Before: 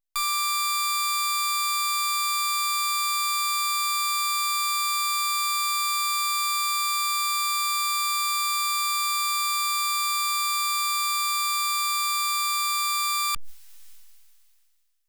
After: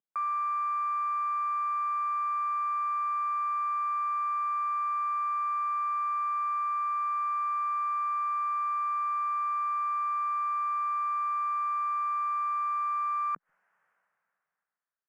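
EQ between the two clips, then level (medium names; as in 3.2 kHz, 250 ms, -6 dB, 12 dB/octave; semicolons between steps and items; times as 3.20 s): elliptic band-pass 170–1600 Hz, stop band 40 dB; 0.0 dB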